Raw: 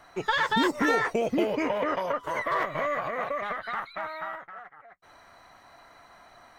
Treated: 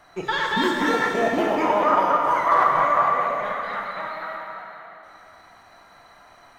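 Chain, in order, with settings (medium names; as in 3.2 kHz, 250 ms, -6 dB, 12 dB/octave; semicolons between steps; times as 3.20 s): 1.19–3.13 s: high-order bell 1 kHz +10 dB 1.2 oct; plate-style reverb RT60 3 s, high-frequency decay 1×, DRR -0.5 dB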